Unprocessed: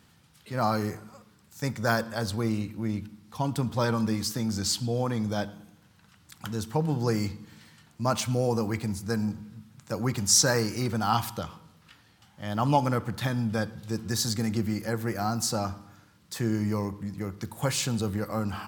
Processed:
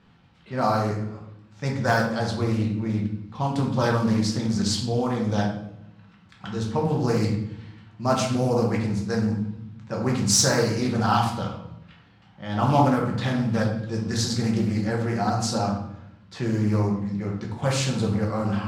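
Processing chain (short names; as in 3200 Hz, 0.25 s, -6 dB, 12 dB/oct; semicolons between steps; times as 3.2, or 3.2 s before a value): median filter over 3 samples; low-pass opened by the level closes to 3000 Hz, open at -21 dBFS; shoebox room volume 180 m³, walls mixed, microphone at 1.1 m; Doppler distortion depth 0.24 ms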